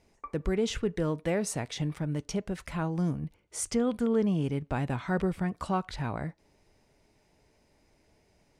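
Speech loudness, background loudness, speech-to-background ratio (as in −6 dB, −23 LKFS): −31.5 LKFS, −48.0 LKFS, 16.5 dB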